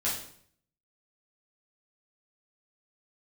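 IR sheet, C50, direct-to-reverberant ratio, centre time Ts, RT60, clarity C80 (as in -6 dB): 4.0 dB, -8.0 dB, 39 ms, 0.60 s, 8.5 dB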